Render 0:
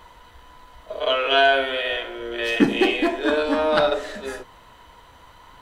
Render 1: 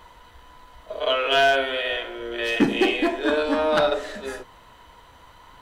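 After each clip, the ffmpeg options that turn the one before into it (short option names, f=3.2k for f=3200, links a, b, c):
-af "asoftclip=type=hard:threshold=-10dB,volume=-1dB"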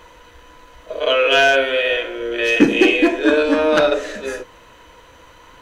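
-af "equalizer=f=315:t=o:w=0.33:g=7,equalizer=f=500:t=o:w=0.33:g=9,equalizer=f=800:t=o:w=0.33:g=-4,equalizer=f=1.6k:t=o:w=0.33:g=4,equalizer=f=2.5k:t=o:w=0.33:g=7,equalizer=f=6.3k:t=o:w=0.33:g=8,volume=2.5dB"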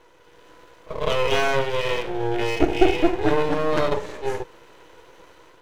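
-af "dynaudnorm=f=130:g=5:m=6.5dB,highpass=f=370:t=q:w=4.4,aeval=exprs='max(val(0),0)':c=same,volume=-9dB"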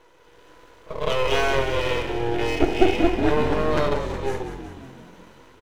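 -filter_complex "[0:a]asplit=8[a][b][c][d][e][f][g][h];[b]adelay=183,afreqshift=-44,volume=-9dB[i];[c]adelay=366,afreqshift=-88,volume=-13.7dB[j];[d]adelay=549,afreqshift=-132,volume=-18.5dB[k];[e]adelay=732,afreqshift=-176,volume=-23.2dB[l];[f]adelay=915,afreqshift=-220,volume=-27.9dB[m];[g]adelay=1098,afreqshift=-264,volume=-32.7dB[n];[h]adelay=1281,afreqshift=-308,volume=-37.4dB[o];[a][i][j][k][l][m][n][o]amix=inputs=8:normalize=0,volume=-1dB"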